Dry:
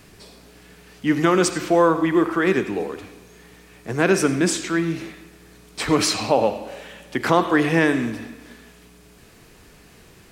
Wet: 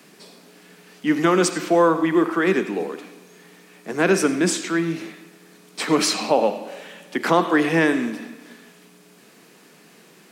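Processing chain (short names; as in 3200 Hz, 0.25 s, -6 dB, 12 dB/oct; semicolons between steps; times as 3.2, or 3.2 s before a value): steep high-pass 160 Hz 48 dB/oct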